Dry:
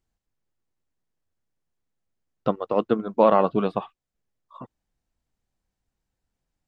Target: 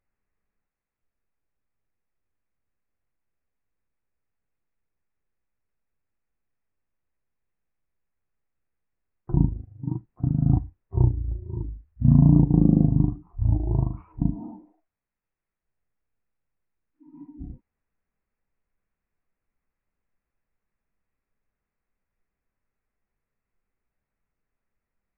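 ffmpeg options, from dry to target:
ffmpeg -i in.wav -af "aresample=22050,aresample=44100,asetrate=11686,aresample=44100" out.wav

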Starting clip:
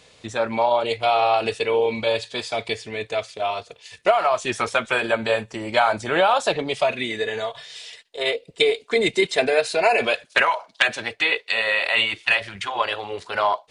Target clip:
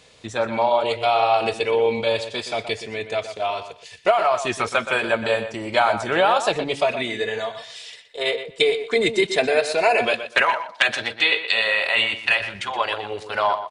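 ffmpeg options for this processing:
ffmpeg -i in.wav -filter_complex "[0:a]asettb=1/sr,asplit=3[link_01][link_02][link_03];[link_01]atrim=end=10.854[link_04];[link_02]atrim=start=10.85:end=11.68,asetpts=PTS-STARTPTS,afade=type=in:duration=0.004:curve=qsin,afade=type=out:start_time=0.826:duration=0.004:curve=qsin,equalizer=frequency=3700:width_type=o:width=0.69:gain=6[link_05];[link_03]atrim=start=11.676[link_06];[link_04][link_05]acrossfade=duration=0.004:curve1=hsin:curve2=qsin[link_07];[link_07][link_06]acrossfade=duration=0.004:curve1=qsin:curve2=hsin,asplit=2[link_08][link_09];[link_09]adelay=122,lowpass=frequency=3900:poles=1,volume=-10dB,asplit=2[link_10][link_11];[link_11]adelay=122,lowpass=frequency=3900:poles=1,volume=0.19,asplit=2[link_12][link_13];[link_13]adelay=122,lowpass=frequency=3900:poles=1,volume=0.19[link_14];[link_08][link_10][link_12][link_14]amix=inputs=4:normalize=0" out.wav

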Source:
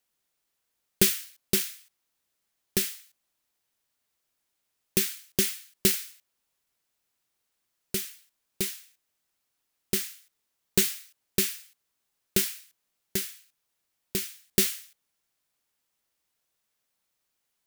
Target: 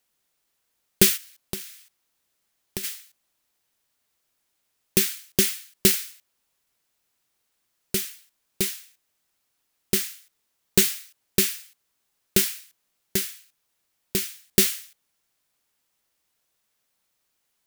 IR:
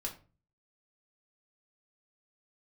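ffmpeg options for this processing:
-filter_complex "[0:a]asplit=3[link_01][link_02][link_03];[link_01]afade=type=out:start_time=1.16:duration=0.02[link_04];[link_02]acompressor=threshold=-34dB:ratio=8,afade=type=in:start_time=1.16:duration=0.02,afade=type=out:start_time=2.83:duration=0.02[link_05];[link_03]afade=type=in:start_time=2.83:duration=0.02[link_06];[link_04][link_05][link_06]amix=inputs=3:normalize=0,volume=4.5dB"

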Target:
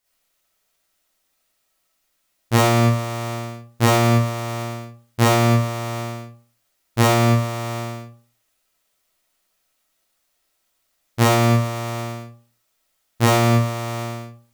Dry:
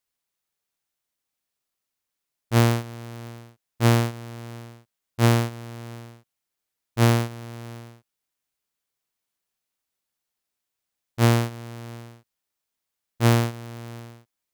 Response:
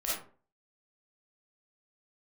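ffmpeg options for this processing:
-filter_complex "[1:a]atrim=start_sample=2205[link_01];[0:a][link_01]afir=irnorm=-1:irlink=0,alimiter=level_in=14dB:limit=-1dB:release=50:level=0:latency=1,volume=-5.5dB"

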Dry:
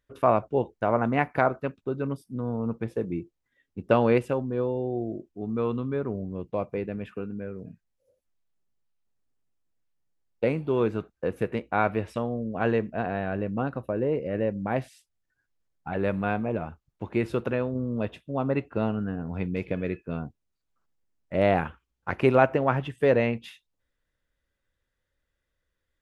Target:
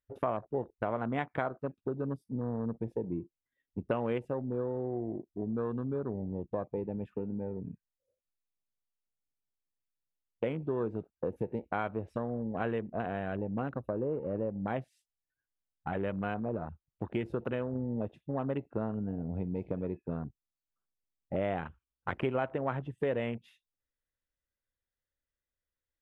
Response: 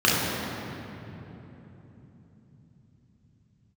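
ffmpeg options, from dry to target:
-af "afwtdn=0.0126,acompressor=threshold=-35dB:ratio=3,volume=2dB"

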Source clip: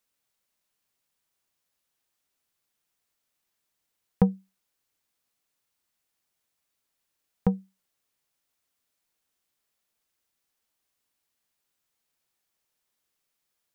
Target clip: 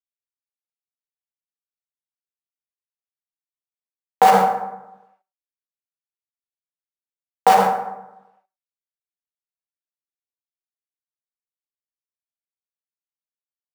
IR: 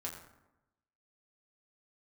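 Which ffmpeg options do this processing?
-filter_complex "[0:a]asplit=2[link_01][link_02];[link_02]acompressor=threshold=-32dB:ratio=6,volume=-2dB[link_03];[link_01][link_03]amix=inputs=2:normalize=0,acrusher=bits=6:dc=4:mix=0:aa=0.000001,highpass=frequency=750:width_type=q:width=3.4[link_04];[1:a]atrim=start_sample=2205[link_05];[link_04][link_05]afir=irnorm=-1:irlink=0,alimiter=level_in=24.5dB:limit=-1dB:release=50:level=0:latency=1,volume=-2dB"

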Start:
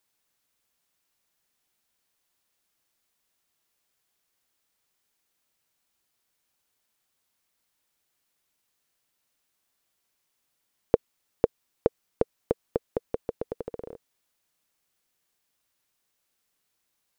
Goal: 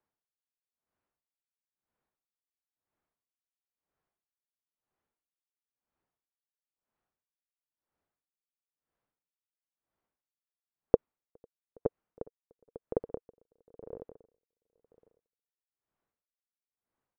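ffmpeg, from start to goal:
ffmpeg -i in.wav -filter_complex "[0:a]lowpass=1200,asplit=2[link_01][link_02];[link_02]aecho=0:1:413|826|1239|1652:0.299|0.113|0.0431|0.0164[link_03];[link_01][link_03]amix=inputs=2:normalize=0,aeval=exprs='val(0)*pow(10,-38*(0.5-0.5*cos(2*PI*1*n/s))/20)':channel_layout=same" out.wav

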